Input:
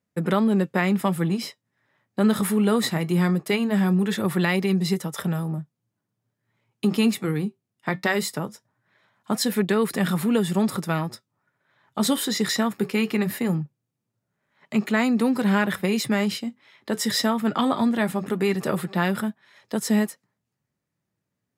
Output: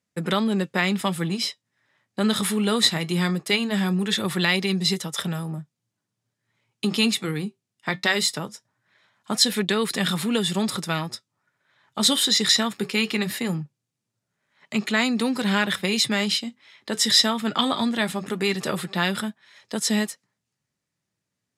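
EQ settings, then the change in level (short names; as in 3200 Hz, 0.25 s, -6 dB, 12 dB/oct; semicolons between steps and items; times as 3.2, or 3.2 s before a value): LPF 8800 Hz 12 dB/oct; high shelf 2100 Hz +11 dB; dynamic EQ 3600 Hz, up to +6 dB, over -39 dBFS, Q 2.2; -3.0 dB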